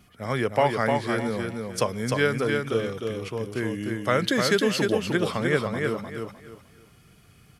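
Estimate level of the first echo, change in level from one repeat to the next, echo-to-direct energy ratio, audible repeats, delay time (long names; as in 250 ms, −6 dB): −4.0 dB, −11.5 dB, −3.5 dB, 3, 304 ms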